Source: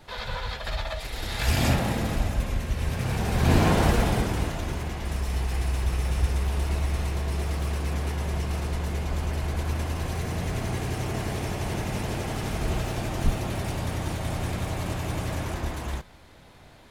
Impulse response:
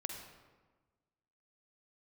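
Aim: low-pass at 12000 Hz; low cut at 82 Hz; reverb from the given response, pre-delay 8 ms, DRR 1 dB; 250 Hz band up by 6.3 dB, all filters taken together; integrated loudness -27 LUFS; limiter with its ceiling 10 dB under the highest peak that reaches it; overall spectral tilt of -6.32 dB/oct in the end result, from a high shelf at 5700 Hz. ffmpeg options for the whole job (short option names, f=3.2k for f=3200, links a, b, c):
-filter_complex "[0:a]highpass=82,lowpass=12k,equalizer=f=250:t=o:g=8.5,highshelf=f=5.7k:g=-6,alimiter=limit=-13.5dB:level=0:latency=1,asplit=2[a][b];[1:a]atrim=start_sample=2205,adelay=8[c];[b][c]afir=irnorm=-1:irlink=0,volume=-0.5dB[d];[a][d]amix=inputs=2:normalize=0,volume=-1.5dB"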